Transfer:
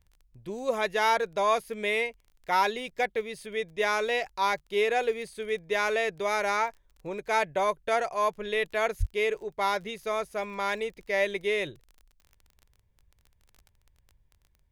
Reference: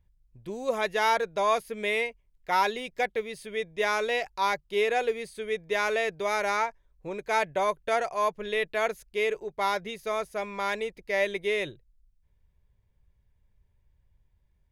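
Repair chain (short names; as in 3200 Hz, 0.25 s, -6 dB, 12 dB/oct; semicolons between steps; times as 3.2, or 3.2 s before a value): de-click; 8.99–9.11 HPF 140 Hz 24 dB/oct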